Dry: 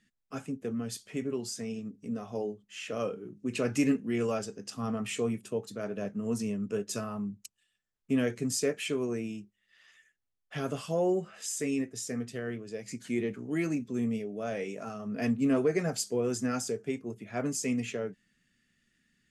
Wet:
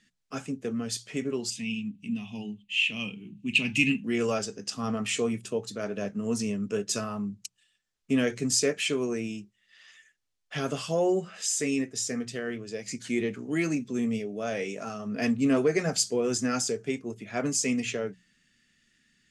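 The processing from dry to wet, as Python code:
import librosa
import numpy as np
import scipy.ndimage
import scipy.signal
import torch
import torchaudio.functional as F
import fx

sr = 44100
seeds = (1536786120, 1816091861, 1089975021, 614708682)

y = fx.curve_eq(x, sr, hz=(130.0, 210.0, 510.0, 920.0, 1400.0, 2700.0, 5300.0, 9000.0), db=(0, 4, -21, -6, -19, 13, -10, -4), at=(1.5, 4.04))
y = scipy.signal.sosfilt(scipy.signal.butter(2, 7100.0, 'lowpass', fs=sr, output='sos'), y)
y = fx.high_shelf(y, sr, hz=2700.0, db=9.0)
y = fx.hum_notches(y, sr, base_hz=60, count=3)
y = F.gain(torch.from_numpy(y), 2.5).numpy()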